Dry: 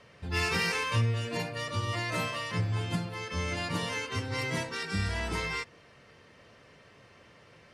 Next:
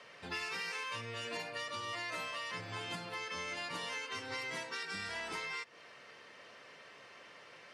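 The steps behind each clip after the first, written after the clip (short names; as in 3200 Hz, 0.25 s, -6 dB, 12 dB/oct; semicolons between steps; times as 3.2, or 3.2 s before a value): weighting filter A; compressor, threshold -41 dBFS, peak gain reduction 14.5 dB; gain +2.5 dB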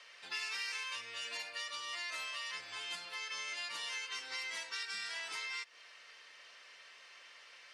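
band-pass 5500 Hz, Q 0.51; gain +3.5 dB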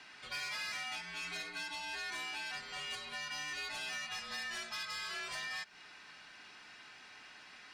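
frequency shift -290 Hz; soft clip -36.5 dBFS, distortion -16 dB; gain +2 dB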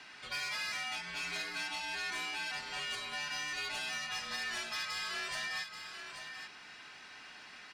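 echo 0.834 s -8.5 dB; gain +2.5 dB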